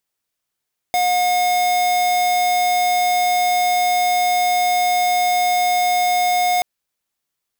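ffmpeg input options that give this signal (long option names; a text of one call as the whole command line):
ffmpeg -f lavfi -i "aevalsrc='0.141*(2*lt(mod(720*t,1),0.5)-1)':duration=5.68:sample_rate=44100" out.wav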